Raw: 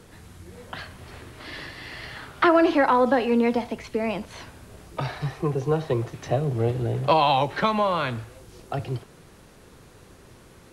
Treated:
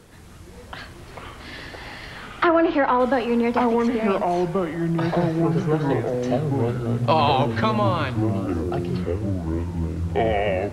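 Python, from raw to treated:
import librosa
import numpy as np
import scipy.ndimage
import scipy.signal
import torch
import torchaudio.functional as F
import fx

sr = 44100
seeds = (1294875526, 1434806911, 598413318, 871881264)

y = fx.echo_pitch(x, sr, ms=139, semitones=-6, count=3, db_per_echo=-3.0)
y = fx.env_lowpass_down(y, sr, base_hz=2700.0, full_db=-14.0, at=(2.23, 3.0))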